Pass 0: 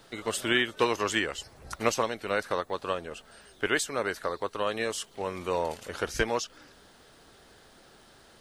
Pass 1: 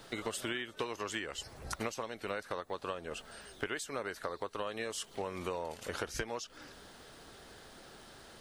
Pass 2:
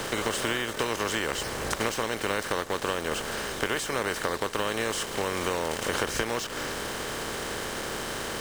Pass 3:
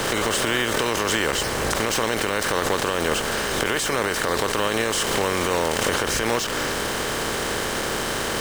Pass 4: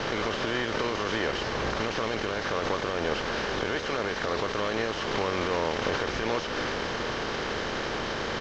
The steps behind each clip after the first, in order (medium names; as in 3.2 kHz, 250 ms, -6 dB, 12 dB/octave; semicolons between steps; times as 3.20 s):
compression 10:1, threshold -36 dBFS, peak gain reduction 17 dB; trim +2 dB
spectral levelling over time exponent 0.4; in parallel at -4.5 dB: word length cut 6-bit, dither none
peak limiter -17.5 dBFS, peak gain reduction 9.5 dB; swell ahead of each attack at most 25 dB/s; trim +7.5 dB
CVSD coder 32 kbps; delay 724 ms -10.5 dB; trim -4.5 dB